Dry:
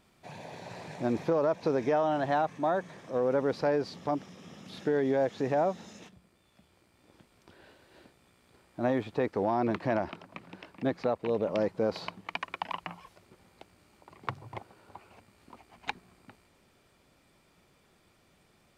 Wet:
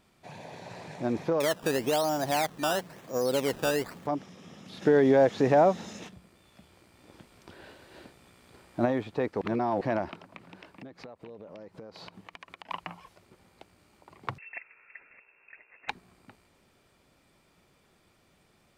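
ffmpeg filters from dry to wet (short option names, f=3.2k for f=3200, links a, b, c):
-filter_complex "[0:a]asettb=1/sr,asplit=3[a][b][c];[a]atrim=end=1.404[d];[b]atrim=start=1.4:end=4.07,asetpts=PTS-STARTPTS,afade=t=in:d=0.004:c=qsin,afade=t=out:st=2.666:d=0.004:c=qsin,acrusher=samples=14:mix=1:aa=0.000001:lfo=1:lforange=14:lforate=1[e];[c]atrim=start=4.066[f];[d][e]acrossfade=d=0.004:c1=hsin:c2=qsin[g];[g][f]acrossfade=d=0.004:c1=qsin:c2=hsin,asplit=3[h][i][j];[h]afade=t=out:st=4.81:d=0.02[k];[i]acontrast=71,afade=t=in:st=4.81:d=0.02,afade=t=out:st=8.84:d=0.02[l];[j]afade=t=in:st=8.84:d=0.02[m];[k][l][m]amix=inputs=3:normalize=0,asettb=1/sr,asplit=3[n][o][p];[n]atrim=end=10.364[q];[o]atrim=start=10.36:end=12.71,asetpts=PTS-STARTPTS,afade=t=in:d=0.004:c=qsin,afade=t=out:st=2.346:d=0.004:c=qsin,acompressor=threshold=-41dB:ratio=16:attack=3.2:release=140:knee=1:detection=peak[r];[p]atrim=start=12.706[s];[q][r]acrossfade=d=0.004:c1=hsin:c2=qsin[t];[t][s]acrossfade=d=0.004:c1=qsin:c2=hsin,asettb=1/sr,asplit=3[u][v][w];[u]atrim=end=14.384[x];[v]atrim=start=14.38:end=15.89,asetpts=PTS-STARTPTS,afade=t=in:d=0.004:c=qsin,afade=t=out:st=1.506:d=0.004:c=qsin,lowpass=f=2.4k:t=q:w=0.5098,lowpass=f=2.4k:t=q:w=0.6013,lowpass=f=2.4k:t=q:w=0.9,lowpass=f=2.4k:t=q:w=2.563,afreqshift=-2800[y];[w]atrim=start=15.886[z];[x][y]acrossfade=d=0.004:c1=hsin:c2=qsin[aa];[aa][z]acrossfade=d=0.004:c1=qsin:c2=hsin,asplit=3[ab][ac][ad];[ab]atrim=end=9.412[ae];[ac]atrim=start=9.408:end=9.812,asetpts=PTS-STARTPTS,areverse[af];[ad]atrim=start=9.808[ag];[ae][af]acrossfade=d=0.004:c1=hsin:c2=hsin[ah];[ah][ag]acrossfade=d=0.004:c1=hsin:c2=hsin"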